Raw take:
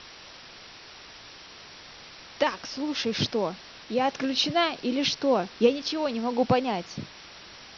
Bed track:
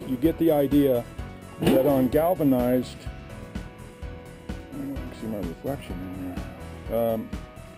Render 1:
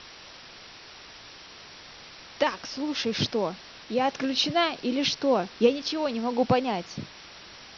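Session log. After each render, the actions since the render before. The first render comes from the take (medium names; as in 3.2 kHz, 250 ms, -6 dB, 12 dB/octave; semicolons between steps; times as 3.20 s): no audible change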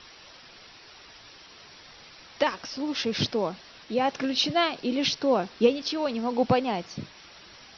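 noise reduction 6 dB, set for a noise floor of -47 dBFS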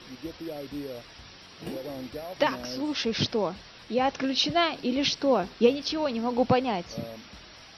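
add bed track -16.5 dB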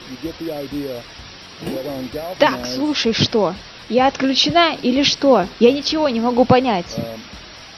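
trim +10.5 dB; peak limiter -1 dBFS, peak gain reduction 3 dB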